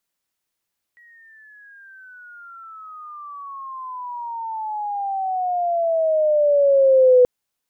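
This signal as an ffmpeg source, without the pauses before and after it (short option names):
-f lavfi -i "aevalsrc='pow(10,(-8.5+38.5*(t/6.28-1))/20)*sin(2*PI*1920*6.28/(-23.5*log(2)/12)*(exp(-23.5*log(2)/12*t/6.28)-1))':d=6.28:s=44100"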